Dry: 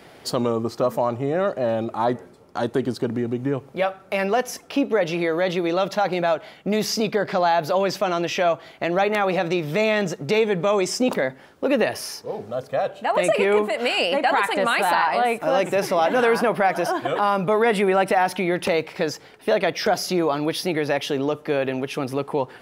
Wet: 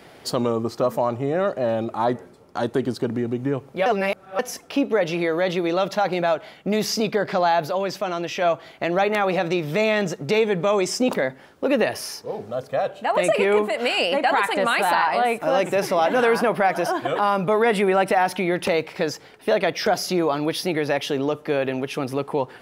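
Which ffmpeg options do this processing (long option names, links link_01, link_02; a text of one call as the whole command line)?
ffmpeg -i in.wav -filter_complex "[0:a]asplit=5[link_01][link_02][link_03][link_04][link_05];[link_01]atrim=end=3.862[link_06];[link_02]atrim=start=3.858:end=4.392,asetpts=PTS-STARTPTS,areverse[link_07];[link_03]atrim=start=4.388:end=7.672[link_08];[link_04]atrim=start=7.668:end=8.422,asetpts=PTS-STARTPTS,volume=-3.5dB[link_09];[link_05]atrim=start=8.418[link_10];[link_06][link_07]acrossfade=duration=0.004:curve1=hsin:curve2=hsin[link_11];[link_11][link_08]acrossfade=duration=0.004:curve1=hsin:curve2=hsin[link_12];[link_12][link_09]acrossfade=duration=0.004:curve1=hsin:curve2=hsin[link_13];[link_13][link_10]acrossfade=duration=0.004:curve1=hsin:curve2=hsin" out.wav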